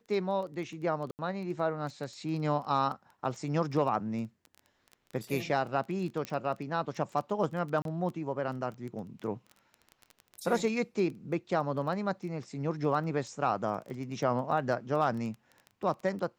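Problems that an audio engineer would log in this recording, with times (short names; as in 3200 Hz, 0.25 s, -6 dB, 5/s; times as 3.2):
crackle 13/s -37 dBFS
1.11–1.19 gap 79 ms
6.25 pop -21 dBFS
7.82–7.85 gap 32 ms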